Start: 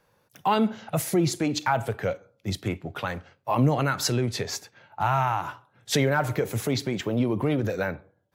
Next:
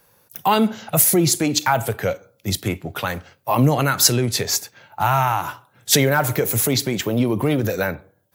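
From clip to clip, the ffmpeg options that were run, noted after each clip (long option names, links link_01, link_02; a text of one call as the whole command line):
ffmpeg -i in.wav -af "aemphasis=mode=production:type=50fm,volume=5.5dB" out.wav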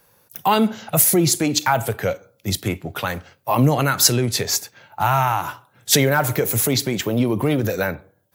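ffmpeg -i in.wav -af anull out.wav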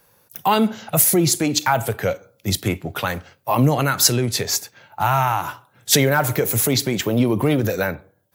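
ffmpeg -i in.wav -af "dynaudnorm=framelen=300:gausssize=7:maxgain=3.5dB" out.wav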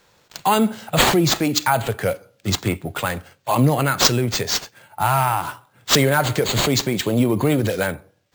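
ffmpeg -i in.wav -af "acrusher=samples=4:mix=1:aa=0.000001" out.wav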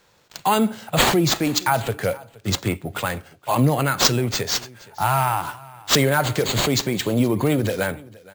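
ffmpeg -i in.wav -af "aecho=1:1:470:0.0794,volume=-1.5dB" out.wav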